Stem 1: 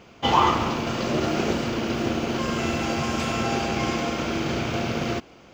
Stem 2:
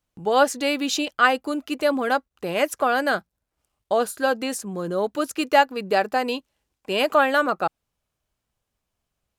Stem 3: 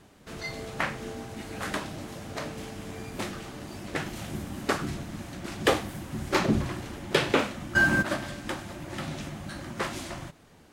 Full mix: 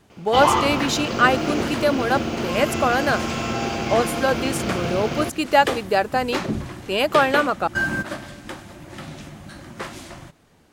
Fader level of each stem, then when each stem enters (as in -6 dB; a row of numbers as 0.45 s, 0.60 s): 0.0 dB, +1.0 dB, -1.0 dB; 0.10 s, 0.00 s, 0.00 s